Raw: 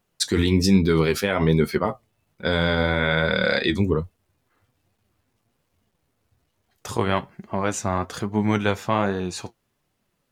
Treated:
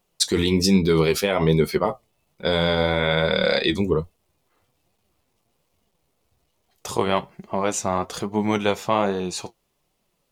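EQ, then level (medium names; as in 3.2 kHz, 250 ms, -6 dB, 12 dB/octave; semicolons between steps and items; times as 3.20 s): fifteen-band graphic EQ 100 Hz -11 dB, 250 Hz -6 dB, 1.6 kHz -8 dB; +3.5 dB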